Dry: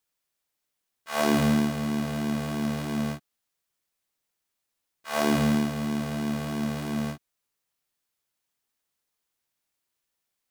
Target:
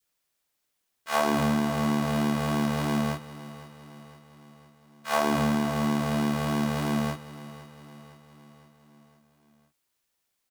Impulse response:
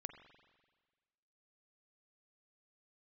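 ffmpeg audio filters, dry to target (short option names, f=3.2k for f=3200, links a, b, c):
-af "adynamicequalizer=threshold=0.00891:dfrequency=960:dqfactor=1.3:tfrequency=960:tqfactor=1.3:attack=5:release=100:ratio=0.375:range=3.5:mode=boostabove:tftype=bell,acompressor=threshold=-24dB:ratio=6,aecho=1:1:510|1020|1530|2040|2550:0.158|0.0872|0.0479|0.0264|0.0145,volume=3.5dB"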